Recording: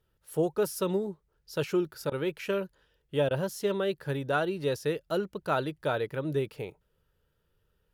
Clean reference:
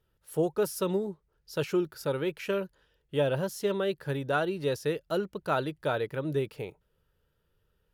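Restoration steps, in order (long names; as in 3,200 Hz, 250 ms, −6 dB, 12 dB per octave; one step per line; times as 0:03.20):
repair the gap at 0:02.10/0:03.29, 16 ms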